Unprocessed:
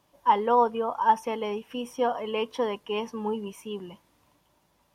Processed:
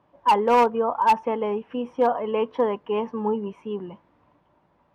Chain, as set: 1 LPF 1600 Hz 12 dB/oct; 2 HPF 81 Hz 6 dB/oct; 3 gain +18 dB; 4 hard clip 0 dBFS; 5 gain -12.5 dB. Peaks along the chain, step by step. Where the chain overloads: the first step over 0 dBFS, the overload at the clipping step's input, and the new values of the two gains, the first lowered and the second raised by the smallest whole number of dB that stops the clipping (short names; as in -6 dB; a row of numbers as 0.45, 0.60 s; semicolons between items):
-10.0, -10.0, +8.0, 0.0, -12.5 dBFS; step 3, 8.0 dB; step 3 +10 dB, step 5 -4.5 dB